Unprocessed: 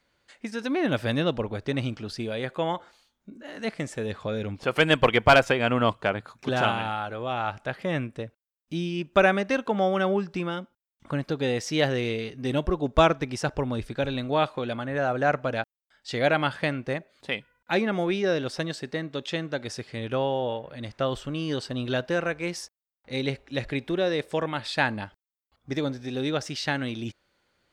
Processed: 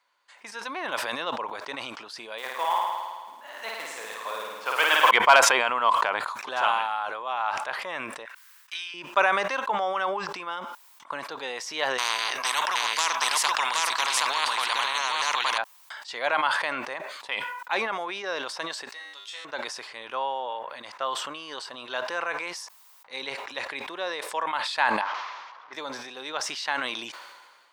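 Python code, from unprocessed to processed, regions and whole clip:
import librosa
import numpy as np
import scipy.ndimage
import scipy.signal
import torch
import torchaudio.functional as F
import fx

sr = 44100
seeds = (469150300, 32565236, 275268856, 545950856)

y = fx.chain(x, sr, fx.block_float(bits=5),
    fx.low_shelf(hz=250.0, db=-10.0),
    fx.room_flutter(wall_m=9.3, rt60_s=1.5), at=(2.38, 5.11))
y = fx.chain(y, sr, fx.highpass_res(hz=1600.0, q=2.8),
    fx.transient(attack_db=10, sustain_db=1), at=(8.25, 8.94))
y = fx.chain(y, sr, fx.echo_single(ms=771, db=-3.5),
    fx.spectral_comp(ratio=10.0), at=(11.98, 15.58))
y = fx.chain(y, sr, fx.tilt_eq(slope=4.5),
    fx.comb_fb(f0_hz=100.0, decay_s=0.54, harmonics='all', damping=0.0, mix_pct=90), at=(18.89, 19.45))
y = fx.chain(y, sr, fx.delta_mod(bps=32000, step_db=-39.5),
    fx.lowpass(hz=1400.0, slope=12),
    fx.tilt_eq(slope=4.0), at=(25.01, 25.73))
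y = scipy.signal.sosfilt(scipy.signal.butter(2, 770.0, 'highpass', fs=sr, output='sos'), y)
y = fx.peak_eq(y, sr, hz=1000.0, db=12.0, octaves=0.47)
y = fx.sustainer(y, sr, db_per_s=37.0)
y = y * librosa.db_to_amplitude(-2.0)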